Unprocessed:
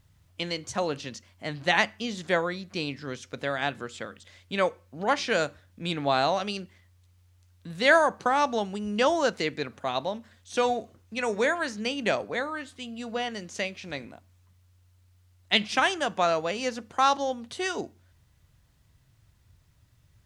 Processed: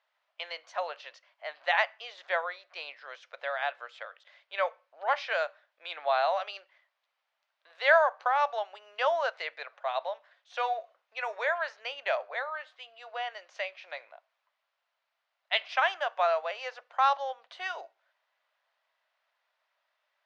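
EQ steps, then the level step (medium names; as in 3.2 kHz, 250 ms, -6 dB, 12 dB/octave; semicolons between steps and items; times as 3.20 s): elliptic high-pass 600 Hz, stop band 70 dB; distance through air 270 m; 0.0 dB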